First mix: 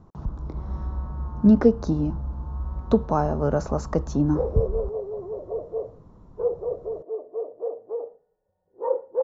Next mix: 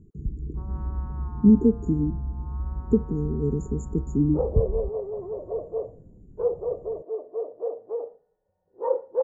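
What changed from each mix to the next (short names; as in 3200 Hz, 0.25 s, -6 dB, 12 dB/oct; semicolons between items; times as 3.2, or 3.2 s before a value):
speech: add brick-wall FIR band-stop 460–6600 Hz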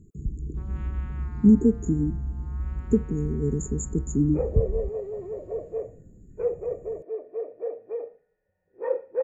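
master: add resonant high shelf 1500 Hz +14 dB, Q 3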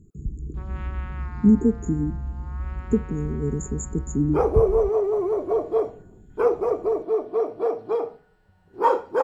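first sound +8.0 dB; second sound: remove vocal tract filter e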